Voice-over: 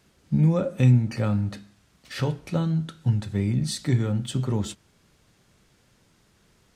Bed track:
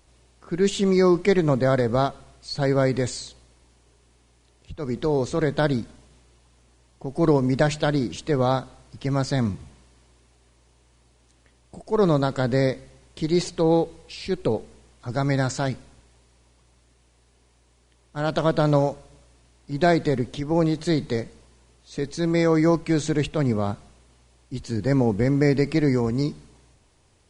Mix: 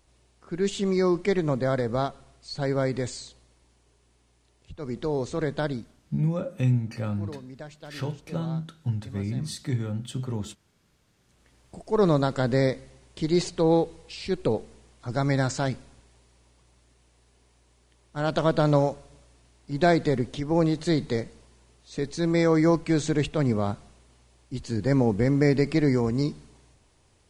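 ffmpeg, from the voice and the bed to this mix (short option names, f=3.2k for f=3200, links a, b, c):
-filter_complex "[0:a]adelay=5800,volume=-5.5dB[a];[1:a]volume=14.5dB,afade=t=out:st=5.5:d=0.74:silence=0.158489,afade=t=in:st=11.13:d=0.46:silence=0.105925[b];[a][b]amix=inputs=2:normalize=0"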